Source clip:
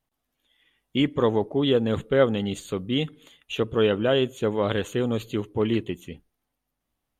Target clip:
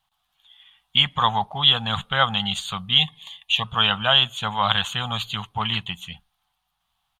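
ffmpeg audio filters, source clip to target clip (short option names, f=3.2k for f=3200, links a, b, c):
-filter_complex "[0:a]firequalizer=gain_entry='entry(190,0);entry(300,-26);entry(470,-18);entry(760,11);entry(1200,11);entry(2000,3);entry(3300,13);entry(5400,-1);entry(13000,-10)':delay=0.05:min_phase=1,crystalizer=i=2:c=0,asettb=1/sr,asplit=3[a][b][c];[a]atrim=end=2.984[d];[b]atrim=start=2.98:end=3.64,asetpts=PTS-STARTPTS,afade=t=in:d=0.004:c=qsin,afade=t=out:st=0.656:d=0.004:c=qsin,asuperstop=centerf=1400:order=12:qfactor=2.8[e];[c]atrim=start=3.636[f];[d][e]acrossfade=d=0.004:c1=hsin:c2=qsin[g];[g][f]acrossfade=d=0.004:c1=qsin:c2=hsin"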